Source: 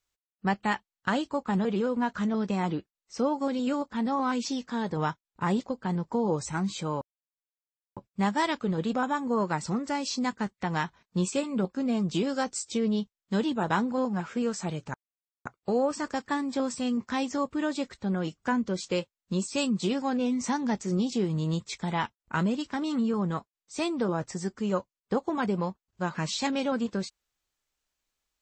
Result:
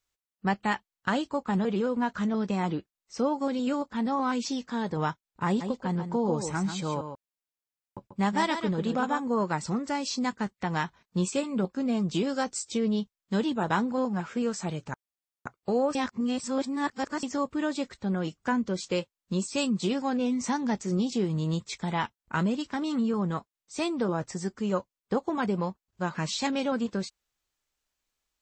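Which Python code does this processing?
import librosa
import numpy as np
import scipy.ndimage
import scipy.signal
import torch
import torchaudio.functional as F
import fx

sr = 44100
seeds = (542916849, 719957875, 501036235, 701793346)

y = fx.echo_single(x, sr, ms=139, db=-8.0, at=(5.6, 9.19), fade=0.02)
y = fx.edit(y, sr, fx.reverse_span(start_s=15.95, length_s=1.28), tone=tone)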